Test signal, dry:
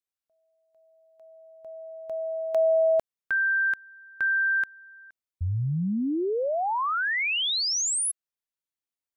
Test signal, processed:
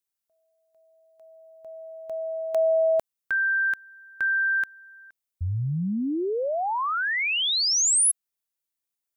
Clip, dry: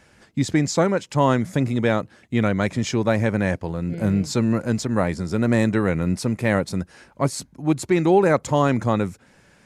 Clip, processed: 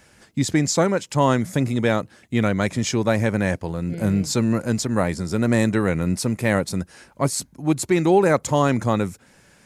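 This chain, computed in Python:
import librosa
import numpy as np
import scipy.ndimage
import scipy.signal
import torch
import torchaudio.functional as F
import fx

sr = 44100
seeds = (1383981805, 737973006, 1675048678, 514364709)

y = fx.high_shelf(x, sr, hz=6500.0, db=9.5)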